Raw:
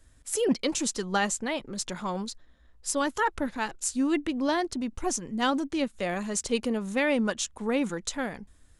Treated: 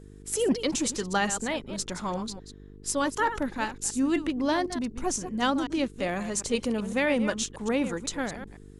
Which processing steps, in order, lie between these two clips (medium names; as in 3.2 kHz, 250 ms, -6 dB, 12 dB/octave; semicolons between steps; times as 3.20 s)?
chunks repeated in reverse 126 ms, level -10.5 dB; mains buzz 50 Hz, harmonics 9, -48 dBFS -3 dB/octave